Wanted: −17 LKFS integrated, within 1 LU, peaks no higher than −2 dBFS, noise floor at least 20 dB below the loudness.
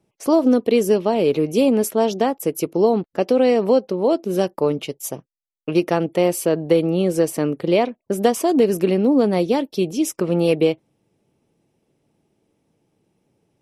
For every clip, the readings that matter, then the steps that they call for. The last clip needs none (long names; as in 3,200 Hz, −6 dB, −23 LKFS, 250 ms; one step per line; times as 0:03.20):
integrated loudness −19.0 LKFS; sample peak −3.0 dBFS; target loudness −17.0 LKFS
→ level +2 dB
brickwall limiter −2 dBFS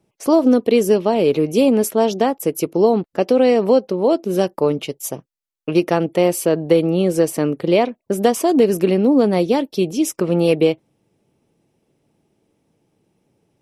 integrated loudness −17.0 LKFS; sample peak −2.0 dBFS; background noise floor −74 dBFS